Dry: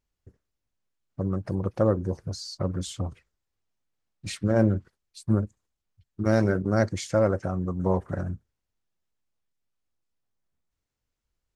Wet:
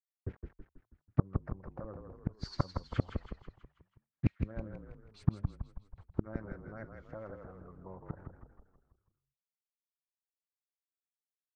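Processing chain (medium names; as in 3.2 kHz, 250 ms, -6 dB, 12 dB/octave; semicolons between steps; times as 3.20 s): spectral noise reduction 8 dB; bit crusher 12-bit; inverted gate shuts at -25 dBFS, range -37 dB; LFO low-pass sine 7.1 Hz 990–2200 Hz; frequency-shifting echo 162 ms, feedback 51%, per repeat -38 Hz, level -5.5 dB; trim +11.5 dB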